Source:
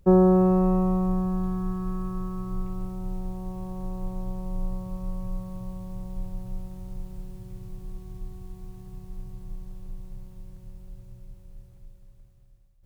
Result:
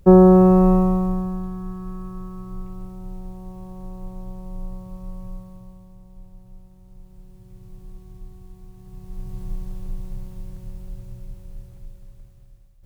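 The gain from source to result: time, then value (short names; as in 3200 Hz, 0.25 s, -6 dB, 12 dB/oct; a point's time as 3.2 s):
0.71 s +7 dB
1.5 s -2.5 dB
5.29 s -2.5 dB
5.98 s -10.5 dB
6.82 s -10.5 dB
7.78 s -2.5 dB
8.74 s -2.5 dB
9.4 s +8 dB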